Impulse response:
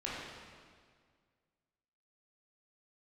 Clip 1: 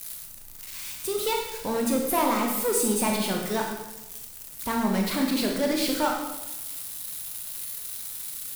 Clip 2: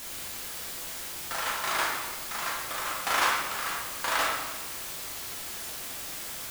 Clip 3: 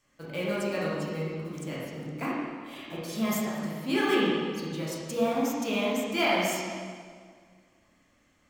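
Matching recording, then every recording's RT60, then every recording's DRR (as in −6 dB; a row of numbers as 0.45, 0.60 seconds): 3; 1.0, 1.4, 1.9 seconds; 0.0, −3.5, −7.5 decibels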